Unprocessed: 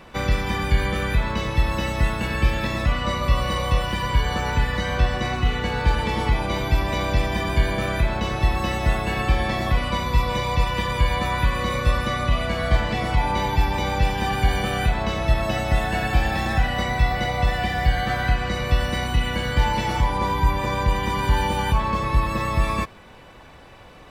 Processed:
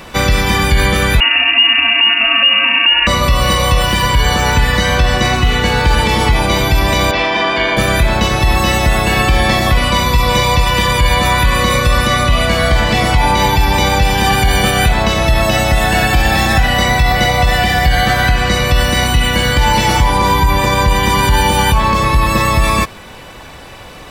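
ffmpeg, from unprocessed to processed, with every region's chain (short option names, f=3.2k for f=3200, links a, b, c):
-filter_complex "[0:a]asettb=1/sr,asplit=3[a][b][c];[a]atrim=end=1.204[d];[b]atrim=start=1.2:end=3.07,asetpts=PTS-STARTPTS,afade=t=in:d=0.004:c=qsin,afade=t=out:st=1.866:d=0.004:c=qsin,acompressor=threshold=-19dB:ratio=3:attack=3.2:release=140:knee=1:detection=peak,lowpass=f=2.5k:t=q:w=0.5098,lowpass=f=2.5k:t=q:w=0.6013,lowpass=f=2.5k:t=q:w=0.9,lowpass=f=2.5k:t=q:w=2.563,afreqshift=-2900[e];[c]atrim=start=3.066[f];[d][e]acrossfade=d=0.004:c1=hsin:c2=qsin[g];[g][f]acrossfade=d=0.004:c1=qsin:c2=hsin,asettb=1/sr,asplit=3[h][i][j];[h]atrim=end=7.114[k];[i]atrim=start=7.11:end=7.77,asetpts=PTS-STARTPTS,afade=t=in:d=0.004:c=qsin,afade=t=out:st=0.656:d=0.004:c=qsin,lowpass=9.4k,acrossover=split=270 4400:gain=0.0708 1 0.0708[l][m][n];[l][m][n]amix=inputs=3:normalize=0,asplit=2[o][p];[p]adelay=40,volume=-4dB[q];[o][q]amix=inputs=2:normalize=0,atrim=end_sample=29106[r];[j]atrim=start=7.766[s];[k][r]acrossfade=d=0.004:c1=hsin:c2=qsin[t];[t][s]acrossfade=d=0.004:c1=qsin:c2=hsin,highshelf=f=3.8k:g=9.5,alimiter=level_in=12dB:limit=-1dB:release=50:level=0:latency=1,volume=-1dB"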